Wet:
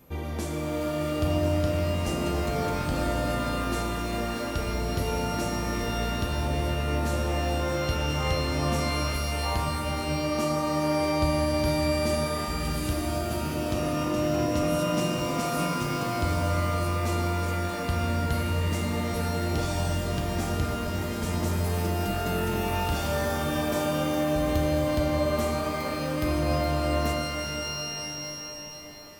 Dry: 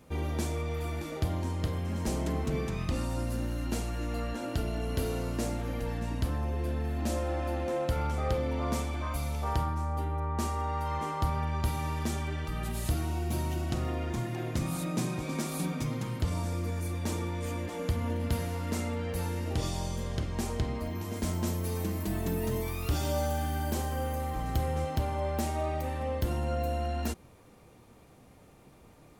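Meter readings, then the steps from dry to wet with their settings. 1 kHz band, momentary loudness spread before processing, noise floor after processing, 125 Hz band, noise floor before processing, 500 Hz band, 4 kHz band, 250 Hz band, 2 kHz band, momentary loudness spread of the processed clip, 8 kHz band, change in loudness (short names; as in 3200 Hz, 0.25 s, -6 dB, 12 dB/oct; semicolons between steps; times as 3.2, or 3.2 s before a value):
+6.0 dB, 3 LU, -34 dBFS, +3.0 dB, -56 dBFS, +7.5 dB, +10.0 dB, +6.0 dB, +8.5 dB, 5 LU, +5.0 dB, +5.0 dB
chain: whine 12000 Hz -61 dBFS; shimmer reverb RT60 3.7 s, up +12 st, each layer -2 dB, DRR 3.5 dB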